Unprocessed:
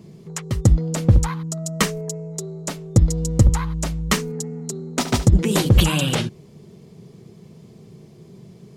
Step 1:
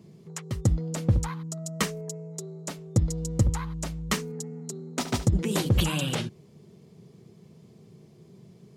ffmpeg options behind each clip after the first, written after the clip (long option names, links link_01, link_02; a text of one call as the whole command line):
ffmpeg -i in.wav -af "highpass=55,volume=-7.5dB" out.wav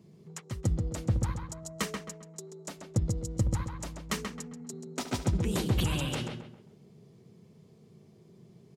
ffmpeg -i in.wav -filter_complex "[0:a]asplit=2[link_01][link_02];[link_02]adelay=133,lowpass=frequency=2800:poles=1,volume=-4dB,asplit=2[link_03][link_04];[link_04]adelay=133,lowpass=frequency=2800:poles=1,volume=0.36,asplit=2[link_05][link_06];[link_06]adelay=133,lowpass=frequency=2800:poles=1,volume=0.36,asplit=2[link_07][link_08];[link_08]adelay=133,lowpass=frequency=2800:poles=1,volume=0.36,asplit=2[link_09][link_10];[link_10]adelay=133,lowpass=frequency=2800:poles=1,volume=0.36[link_11];[link_01][link_03][link_05][link_07][link_09][link_11]amix=inputs=6:normalize=0,volume=-5.5dB" out.wav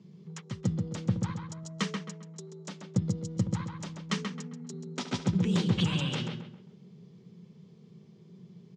ffmpeg -i in.wav -af "highpass=frequency=110:width=0.5412,highpass=frequency=110:width=1.3066,equalizer=frequency=180:width_type=q:width=4:gain=9,equalizer=frequency=300:width_type=q:width=4:gain=-4,equalizer=frequency=670:width_type=q:width=4:gain=-7,equalizer=frequency=3300:width_type=q:width=4:gain=4,lowpass=frequency=6500:width=0.5412,lowpass=frequency=6500:width=1.3066" out.wav